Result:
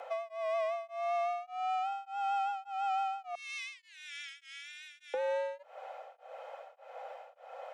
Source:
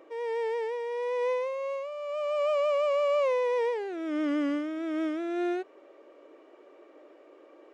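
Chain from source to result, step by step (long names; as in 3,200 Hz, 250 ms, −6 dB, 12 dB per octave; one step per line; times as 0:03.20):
0:03.35–0:05.14: Bessel high-pass filter 2,900 Hz, order 6
brickwall limiter −25.5 dBFS, peak gain reduction 5.5 dB
downward compressor, threshold −39 dBFS, peak gain reduction 10 dB
frequency shifter +200 Hz
tremolo along a rectified sine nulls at 1.7 Hz
level +8.5 dB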